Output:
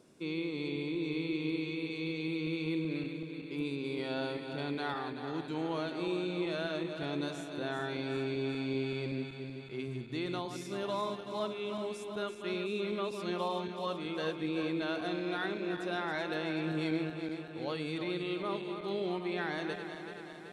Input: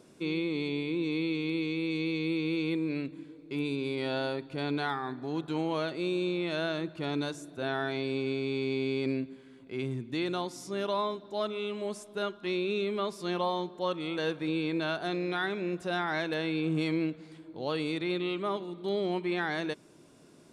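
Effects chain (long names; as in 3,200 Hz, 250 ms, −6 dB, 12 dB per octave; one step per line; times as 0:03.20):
feedback delay that plays each chunk backwards 190 ms, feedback 77%, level −8 dB
level −5 dB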